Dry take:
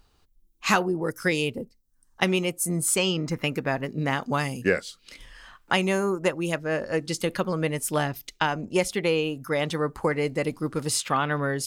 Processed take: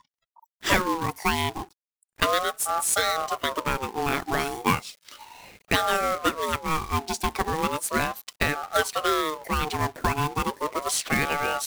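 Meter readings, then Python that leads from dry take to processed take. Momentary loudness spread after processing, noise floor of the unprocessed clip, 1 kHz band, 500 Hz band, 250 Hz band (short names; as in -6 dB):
6 LU, -64 dBFS, +5.0 dB, -3.5 dB, -4.0 dB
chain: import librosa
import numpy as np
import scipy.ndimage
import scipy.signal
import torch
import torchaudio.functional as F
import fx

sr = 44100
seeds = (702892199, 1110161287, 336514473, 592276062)

y = fx.quant_companded(x, sr, bits=4)
y = fx.noise_reduce_blind(y, sr, reduce_db=28)
y = fx.ring_lfo(y, sr, carrier_hz=780.0, swing_pct=30, hz=0.35)
y = y * librosa.db_to_amplitude(2.5)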